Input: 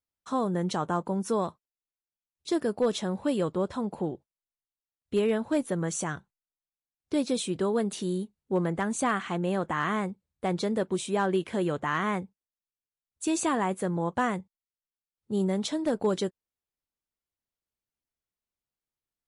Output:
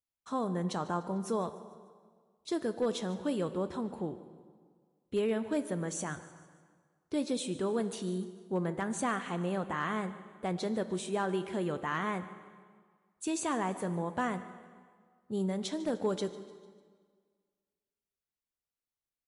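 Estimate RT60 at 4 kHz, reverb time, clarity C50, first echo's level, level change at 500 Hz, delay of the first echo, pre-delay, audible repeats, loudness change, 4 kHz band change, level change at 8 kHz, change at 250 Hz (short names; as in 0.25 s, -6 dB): 1.4 s, 1.7 s, 12.0 dB, -19.0 dB, -5.0 dB, 0.149 s, 3 ms, 3, -5.0 dB, -5.0 dB, -5.0 dB, -5.0 dB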